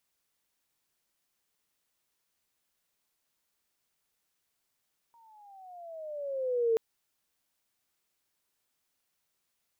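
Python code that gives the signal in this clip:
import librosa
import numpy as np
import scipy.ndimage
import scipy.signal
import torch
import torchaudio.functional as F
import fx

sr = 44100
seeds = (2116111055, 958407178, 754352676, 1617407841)

y = fx.riser_tone(sr, length_s=1.63, level_db=-22, wave='sine', hz=942.0, rise_st=-13.0, swell_db=35.5)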